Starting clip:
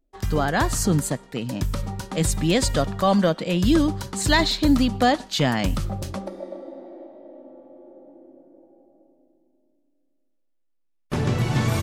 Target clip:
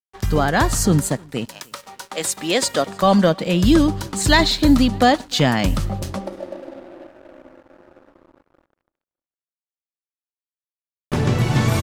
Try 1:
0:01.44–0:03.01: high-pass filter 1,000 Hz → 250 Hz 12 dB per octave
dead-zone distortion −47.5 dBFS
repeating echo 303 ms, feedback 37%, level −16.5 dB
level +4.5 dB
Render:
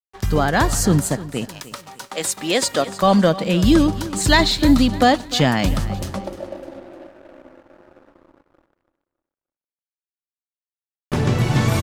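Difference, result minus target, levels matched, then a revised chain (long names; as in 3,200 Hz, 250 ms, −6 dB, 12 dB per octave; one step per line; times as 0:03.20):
echo-to-direct +11 dB
0:01.44–0:03.01: high-pass filter 1,000 Hz → 250 Hz 12 dB per octave
dead-zone distortion −47.5 dBFS
repeating echo 303 ms, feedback 37%, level −27.5 dB
level +4.5 dB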